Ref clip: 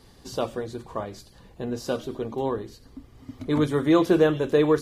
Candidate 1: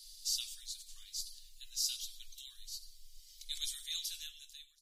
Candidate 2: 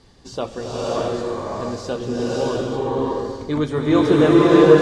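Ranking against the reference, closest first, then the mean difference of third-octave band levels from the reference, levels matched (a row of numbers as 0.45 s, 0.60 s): 2, 1; 8.0 dB, 22.5 dB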